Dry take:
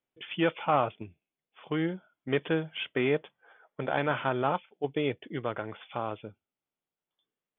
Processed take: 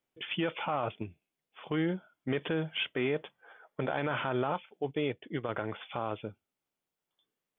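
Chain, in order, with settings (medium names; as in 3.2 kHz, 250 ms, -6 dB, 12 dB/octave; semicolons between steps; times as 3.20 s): peak limiter -25 dBFS, peak gain reduction 11 dB; 4.91–5.49 s: upward expansion 1.5:1, over -43 dBFS; trim +3 dB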